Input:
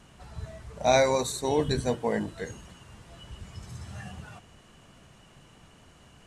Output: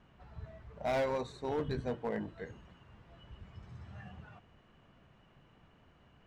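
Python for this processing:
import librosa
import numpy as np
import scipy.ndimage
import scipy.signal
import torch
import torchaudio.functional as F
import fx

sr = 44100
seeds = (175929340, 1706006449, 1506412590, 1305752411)

y = scipy.signal.sosfilt(scipy.signal.butter(2, 2600.0, 'lowpass', fs=sr, output='sos'), x)
y = np.clip(y, -10.0 ** (-20.0 / 20.0), 10.0 ** (-20.0 / 20.0))
y = y * librosa.db_to_amplitude(-8.0)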